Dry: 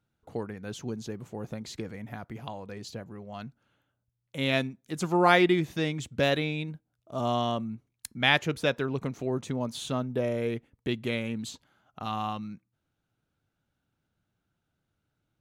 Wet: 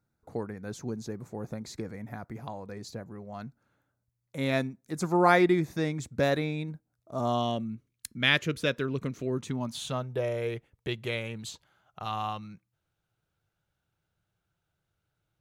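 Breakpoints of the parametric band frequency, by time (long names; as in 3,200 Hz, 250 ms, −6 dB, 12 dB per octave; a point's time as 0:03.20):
parametric band −14.5 dB 0.44 octaves
0:07.24 3,000 Hz
0:07.68 800 Hz
0:09.29 800 Hz
0:10.07 250 Hz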